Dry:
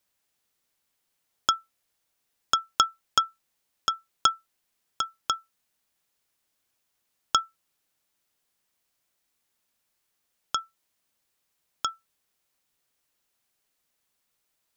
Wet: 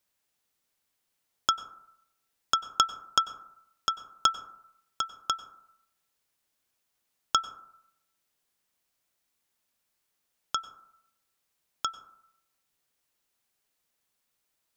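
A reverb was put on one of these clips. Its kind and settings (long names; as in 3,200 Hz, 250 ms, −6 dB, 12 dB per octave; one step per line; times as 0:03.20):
dense smooth reverb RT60 0.76 s, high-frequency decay 0.3×, pre-delay 85 ms, DRR 14.5 dB
level −2 dB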